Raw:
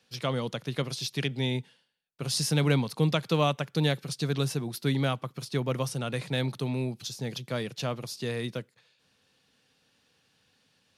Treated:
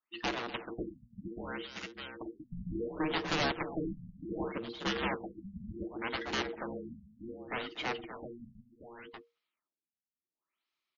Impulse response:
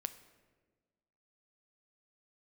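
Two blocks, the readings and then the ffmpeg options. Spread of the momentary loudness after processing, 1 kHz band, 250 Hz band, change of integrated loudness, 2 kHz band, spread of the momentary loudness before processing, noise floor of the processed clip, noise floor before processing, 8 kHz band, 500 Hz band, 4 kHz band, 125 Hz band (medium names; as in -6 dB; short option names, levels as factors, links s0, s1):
16 LU, -3.0 dB, -7.0 dB, -8.0 dB, -1.5 dB, 9 LU, under -85 dBFS, -70 dBFS, -15.5 dB, -8.0 dB, -7.0 dB, -18.0 dB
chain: -filter_complex "[0:a]acrossover=split=4100[s0][s1];[s1]acompressor=threshold=0.00316:ratio=4:attack=1:release=60[s2];[s0][s2]amix=inputs=2:normalize=0,afftdn=nr=26:nf=-38,lowshelf=f=460:g=-7.5,aeval=exprs='0.211*(cos(1*acos(clip(val(0)/0.211,-1,1)))-cos(1*PI/2))+0.0106*(cos(2*acos(clip(val(0)/0.211,-1,1)))-cos(2*PI/2))+0.00168*(cos(5*acos(clip(val(0)/0.211,-1,1)))-cos(5*PI/2))+0.0376*(cos(7*acos(clip(val(0)/0.211,-1,1)))-cos(7*PI/2))+0.00335*(cos(8*acos(clip(val(0)/0.211,-1,1)))-cos(8*PI/2))':c=same,aeval=exprs='0.188*sin(PI/2*2.51*val(0)/0.188)':c=same,afreqshift=-470,volume=6.68,asoftclip=hard,volume=0.15,asplit=2[s3][s4];[s4]highpass=f=720:p=1,volume=15.8,asoftclip=type=tanh:threshold=0.158[s5];[s3][s5]amix=inputs=2:normalize=0,lowpass=f=5600:p=1,volume=0.501,asplit=2[s6][s7];[s7]aecho=0:1:46|244|348|583|594:0.106|0.188|0.1|0.376|0.106[s8];[s6][s8]amix=inputs=2:normalize=0,afftfilt=real='re*lt(b*sr/1024,220*pow(7200/220,0.5+0.5*sin(2*PI*0.67*pts/sr)))':imag='im*lt(b*sr/1024,220*pow(7200/220,0.5+0.5*sin(2*PI*0.67*pts/sr)))':win_size=1024:overlap=0.75,volume=0.398"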